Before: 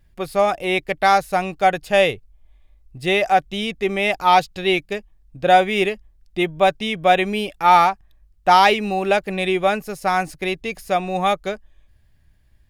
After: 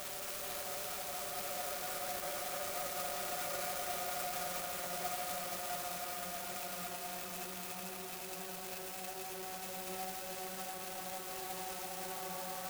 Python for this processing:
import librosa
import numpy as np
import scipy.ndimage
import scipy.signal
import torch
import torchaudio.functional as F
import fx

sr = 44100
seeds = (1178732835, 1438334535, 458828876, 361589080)

p1 = np.where(x < 0.0, 10.0 ** (-12.0 / 20.0) * x, x)
p2 = fx.paulstretch(p1, sr, seeds[0], factor=40.0, window_s=0.25, from_s=10.86)
p3 = fx.peak_eq(p2, sr, hz=240.0, db=-8.5, octaves=0.26)
p4 = p3 + 10.0 ** (-8.5 / 20.0) * np.pad(p3, (int(79 * sr / 1000.0), 0))[:len(p3)]
p5 = fx.fuzz(p4, sr, gain_db=39.0, gate_db=-44.0)
p6 = p4 + F.gain(torch.from_numpy(p5), -12.0).numpy()
p7 = scipy.signal.sosfilt(scipy.signal.butter(2, 62.0, 'highpass', fs=sr, output='sos'), p6)
p8 = scipy.signal.lfilter([1.0, -0.9], [1.0], p7)
p9 = p8 + fx.echo_split(p8, sr, split_hz=770.0, low_ms=523, high_ms=218, feedback_pct=52, wet_db=-4.5, dry=0)
p10 = fx.clock_jitter(p9, sr, seeds[1], jitter_ms=0.089)
y = F.gain(torch.from_numpy(p10), -8.0).numpy()